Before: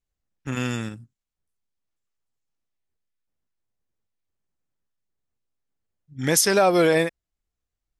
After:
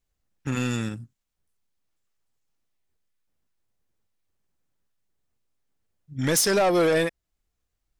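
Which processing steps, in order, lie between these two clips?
in parallel at −2 dB: downward compressor, threshold −31 dBFS, peak gain reduction 16 dB
on the sum: soft clipping −16 dBFS, distortion −12 dB

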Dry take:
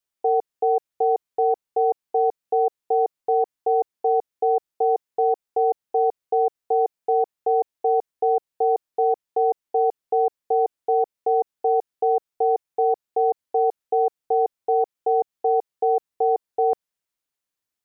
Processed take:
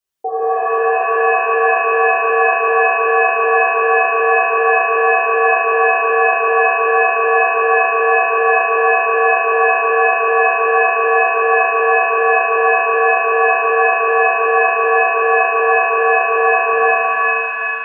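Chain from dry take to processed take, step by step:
reverb with rising layers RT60 2.7 s, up +7 semitones, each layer −2 dB, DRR −8 dB
level −1.5 dB

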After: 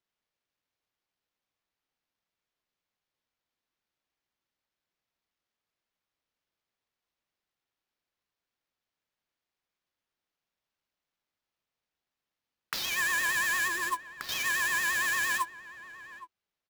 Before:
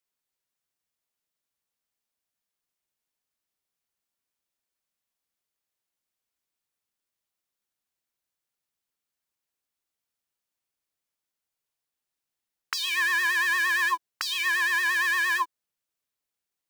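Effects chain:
0:13.68–0:14.29: running median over 15 samples
sample-rate reduction 9,100 Hz, jitter 20%
slap from a distant wall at 140 metres, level −15 dB
level −4 dB

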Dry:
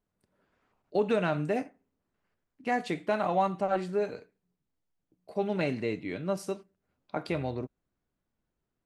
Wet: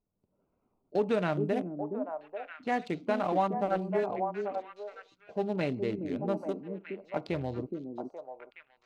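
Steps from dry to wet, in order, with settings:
adaptive Wiener filter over 25 samples
echo through a band-pass that steps 419 ms, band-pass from 280 Hz, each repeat 1.4 octaves, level −1 dB
level −1 dB

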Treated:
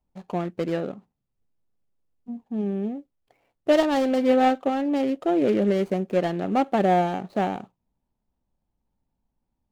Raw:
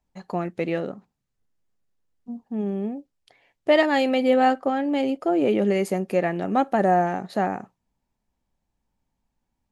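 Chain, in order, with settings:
running median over 25 samples
highs frequency-modulated by the lows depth 0.12 ms

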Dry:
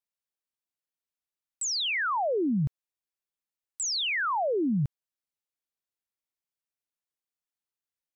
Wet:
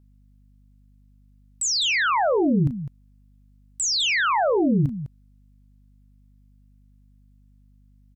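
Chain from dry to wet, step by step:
loudspeakers that aren't time-aligned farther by 12 metres −10 dB, 70 metres −11 dB
mains hum 50 Hz, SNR 29 dB
level +6 dB

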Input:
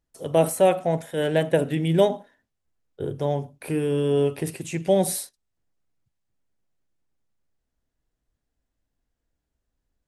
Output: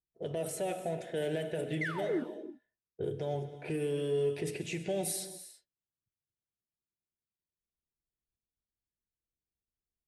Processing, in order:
sound drawn into the spectrogram fall, 0:01.81–0:02.23, 240–2,200 Hz −18 dBFS
in parallel at −9 dB: hard clipping −22 dBFS, distortion −6 dB
on the sum: noise gate −44 dBFS, range −13 dB
low-shelf EQ 230 Hz −8 dB
notch comb filter 270 Hz
downward compressor 2.5 to 1, threshold −31 dBFS, peak gain reduction 12.5 dB
brickwall limiter −25 dBFS, peak gain reduction 7.5 dB
low-pass that shuts in the quiet parts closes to 420 Hz, open at −29.5 dBFS
parametric band 1,100 Hz −13.5 dB 0.59 octaves
reverb whose tail is shaped and stops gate 370 ms flat, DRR 9.5 dB

